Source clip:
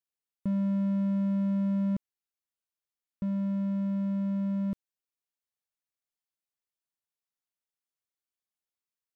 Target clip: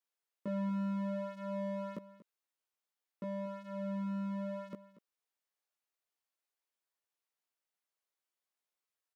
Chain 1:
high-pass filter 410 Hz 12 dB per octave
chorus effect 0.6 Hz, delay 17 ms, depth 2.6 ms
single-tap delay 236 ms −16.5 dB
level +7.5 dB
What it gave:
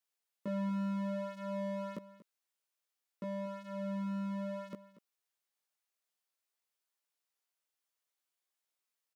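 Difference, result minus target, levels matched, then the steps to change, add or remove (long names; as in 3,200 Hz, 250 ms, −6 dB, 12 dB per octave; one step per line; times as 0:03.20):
4,000 Hz band +3.5 dB
add after high-pass filter: high-shelf EQ 2,500 Hz −5.5 dB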